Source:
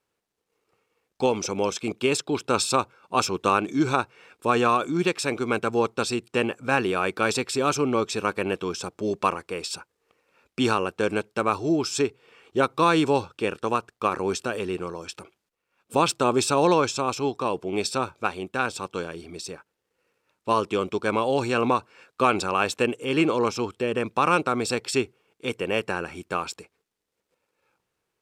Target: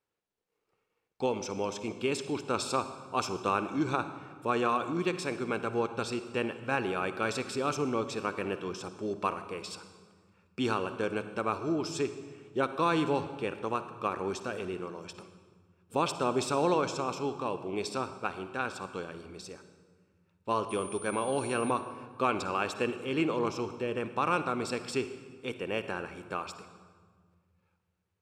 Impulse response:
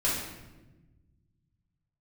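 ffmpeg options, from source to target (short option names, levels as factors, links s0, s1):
-filter_complex "[0:a]highshelf=f=5100:g=-5.5,asettb=1/sr,asplit=3[s0][s1][s2];[s0]atrim=end=20.694[s3];[s1]atrim=start=20.69:end=21.71,asetpts=PTS-STARTPTS,afade=t=in:d=0.004:c=qsin,afade=t=out:st=1.016:d=0.004:c=qsin,aeval=exprs='val(0)+0.0112*sin(2*PI*9300*n/s)':c=same[s4];[s2]atrim=start=21.706[s5];[s3][s4]acrossfade=d=0.004:c1=hsin:c2=qsin[s6];[s6][s5]acrossfade=d=0.004:c1=qsin:c2=hsin,asplit=2[s7][s8];[1:a]atrim=start_sample=2205,asetrate=26019,aresample=44100,adelay=50[s9];[s8][s9]afir=irnorm=-1:irlink=0,volume=0.0631[s10];[s7][s10]amix=inputs=2:normalize=0,volume=0.422"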